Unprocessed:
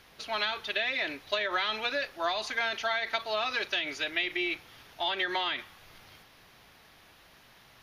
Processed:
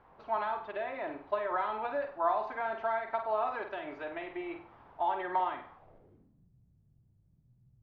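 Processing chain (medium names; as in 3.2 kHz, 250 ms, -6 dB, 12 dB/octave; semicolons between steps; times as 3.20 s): flutter echo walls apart 8.4 m, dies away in 0.4 s; low-pass sweep 960 Hz -> 130 Hz, 5.75–6.52 s; trim -3.5 dB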